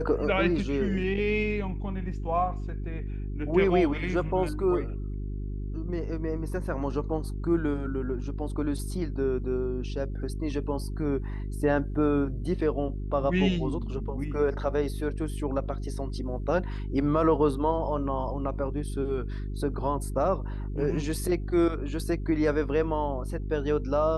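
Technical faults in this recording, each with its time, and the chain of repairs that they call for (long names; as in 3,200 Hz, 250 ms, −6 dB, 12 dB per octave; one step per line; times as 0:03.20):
mains hum 50 Hz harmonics 8 −33 dBFS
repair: hum removal 50 Hz, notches 8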